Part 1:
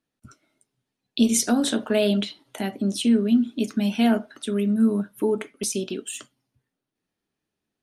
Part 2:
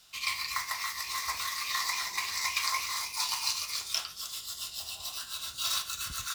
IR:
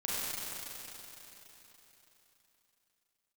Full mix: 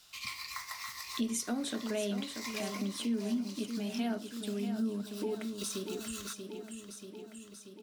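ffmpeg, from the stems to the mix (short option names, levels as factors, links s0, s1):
-filter_complex "[0:a]volume=0.708,asplit=3[s0][s1][s2];[s1]volume=0.355[s3];[1:a]volume=0.891,asplit=2[s4][s5];[s5]volume=0.0944[s6];[s2]apad=whole_len=279848[s7];[s4][s7]sidechaincompress=threshold=0.0316:ratio=8:attack=16:release=490[s8];[s3][s6]amix=inputs=2:normalize=0,aecho=0:1:635|1270|1905|2540|3175|3810|4445|5080:1|0.53|0.281|0.149|0.0789|0.0418|0.0222|0.0117[s9];[s0][s8][s9]amix=inputs=3:normalize=0,acompressor=threshold=0.00282:ratio=1.5"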